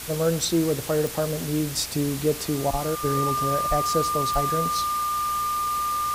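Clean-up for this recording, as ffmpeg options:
ffmpeg -i in.wav -af "adeclick=threshold=4,bandreject=frequency=59.7:width_type=h:width=4,bandreject=frequency=119.4:width_type=h:width=4,bandreject=frequency=179.1:width_type=h:width=4,bandreject=frequency=238.8:width_type=h:width=4,bandreject=frequency=1200:width=30,afwtdn=0.018" out.wav

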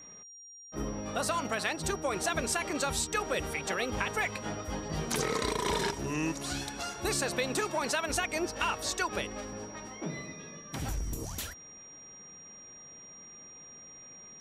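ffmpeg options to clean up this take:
ffmpeg -i in.wav -af "bandreject=frequency=5700:width=30" out.wav

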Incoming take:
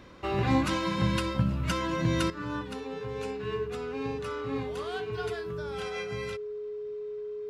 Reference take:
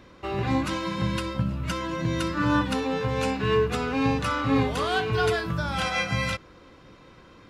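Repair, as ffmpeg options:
ffmpeg -i in.wav -af "bandreject=frequency=420:width=30,asetnsamples=nb_out_samples=441:pad=0,asendcmd='2.3 volume volume 12dB',volume=0dB" out.wav

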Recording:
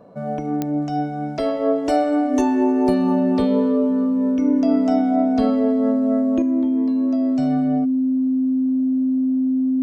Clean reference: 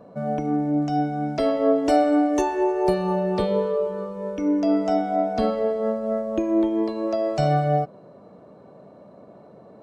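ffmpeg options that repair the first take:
ffmpeg -i in.wav -af "adeclick=threshold=4,bandreject=frequency=260:width=30,asetnsamples=nb_out_samples=441:pad=0,asendcmd='6.42 volume volume 8dB',volume=0dB" out.wav

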